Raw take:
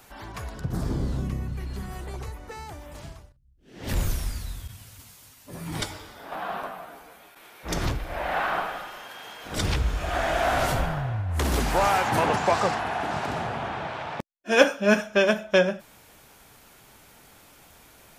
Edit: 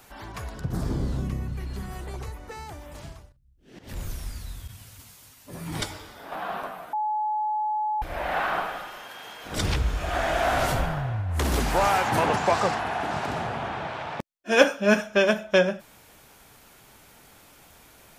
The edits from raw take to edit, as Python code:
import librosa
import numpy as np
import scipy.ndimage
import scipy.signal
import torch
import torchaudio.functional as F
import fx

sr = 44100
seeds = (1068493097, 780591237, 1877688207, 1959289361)

y = fx.edit(x, sr, fx.fade_in_from(start_s=3.79, length_s=1.03, floor_db=-14.0),
    fx.bleep(start_s=6.93, length_s=1.09, hz=853.0, db=-23.5), tone=tone)